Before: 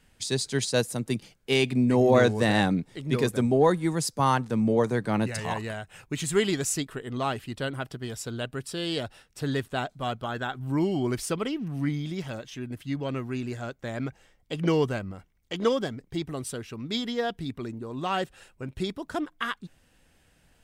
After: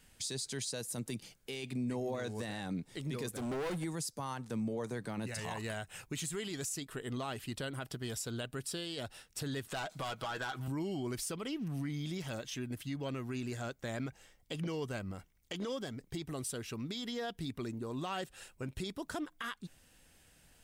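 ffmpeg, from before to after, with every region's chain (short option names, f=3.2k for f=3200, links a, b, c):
-filter_complex "[0:a]asettb=1/sr,asplit=3[a][b][c];[a]atrim=end=3.294[d];[b]atrim=start=3.29:end=3.84,asetpts=PTS-STARTPTS,afade=t=in:d=0.004:c=qsin,afade=t=out:st=0.546:d=0.004:c=qsin,acompressor=threshold=-21dB:ratio=6:attack=3.2:release=140:knee=1:detection=peak,volume=30dB,asoftclip=hard,volume=-30dB[e];[c]atrim=start=3.836[f];[d][e]acrossfade=d=0.004:c1=hsin:c2=qsin[g];[g][f]acrossfade=d=0.004:c1=qsin:c2=hsin,asettb=1/sr,asplit=3[h][i][j];[h]atrim=end=9.684[k];[i]atrim=start=9.68:end=10.68,asetpts=PTS-STARTPTS,afade=t=in:d=0.004:c=qsin,afade=t=out:st=0.996:d=0.004:c=qsin,asplit=2[l][m];[m]highpass=f=720:p=1,volume=19dB,asoftclip=type=tanh:threshold=-16dB[n];[l][n]amix=inputs=2:normalize=0,lowpass=f=5.5k:p=1,volume=-6dB,aecho=1:1:6.2:0.39,atrim=end_sample=44100,acompressor=threshold=-34dB:ratio=4:attack=3.2:release=140:knee=1:detection=peak[o];[j]atrim=start=10.676[p];[k][o]acrossfade=d=0.004:c1=hsin:c2=qsin[q];[q][p]acrossfade=d=0.004:c1=qsin:c2=hsin,highshelf=f=4.2k:g=9,acompressor=threshold=-32dB:ratio=3,alimiter=level_in=2.5dB:limit=-24dB:level=0:latency=1:release=19,volume=-2.5dB,volume=-3dB"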